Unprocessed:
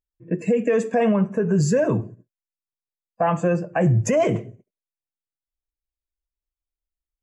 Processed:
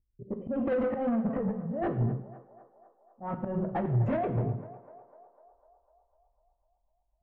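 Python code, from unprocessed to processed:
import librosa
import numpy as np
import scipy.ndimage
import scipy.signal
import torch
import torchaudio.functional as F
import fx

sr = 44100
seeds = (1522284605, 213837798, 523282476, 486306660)

p1 = fx.pitch_glide(x, sr, semitones=2.5, runs='ending unshifted')
p2 = fx.low_shelf(p1, sr, hz=340.0, db=9.5)
p3 = fx.auto_swell(p2, sr, attack_ms=405.0)
p4 = fx.over_compress(p3, sr, threshold_db=-22.0, ratio=-0.5)
p5 = 10.0 ** (-25.5 / 20.0) * np.tanh(p4 / 10.0 ** (-25.5 / 20.0))
p6 = fx.env_lowpass(p5, sr, base_hz=340.0, full_db=-19.0)
p7 = fx.air_absorb(p6, sr, metres=200.0)
p8 = p7 + fx.echo_banded(p7, sr, ms=250, feedback_pct=68, hz=820.0, wet_db=-14.0, dry=0)
y = fx.rev_gated(p8, sr, seeds[0], gate_ms=240, shape='falling', drr_db=7.5)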